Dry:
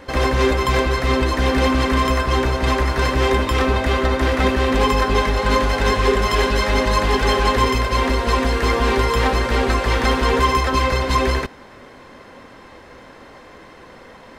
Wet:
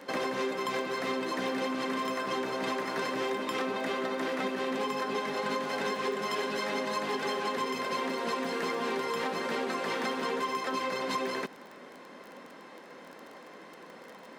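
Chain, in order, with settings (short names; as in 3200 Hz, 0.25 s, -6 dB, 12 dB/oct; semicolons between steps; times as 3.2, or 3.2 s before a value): Chebyshev high-pass 170 Hz, order 4; compressor, threshold -23 dBFS, peak gain reduction 10.5 dB; crackle 22/s -33 dBFS; gain -6 dB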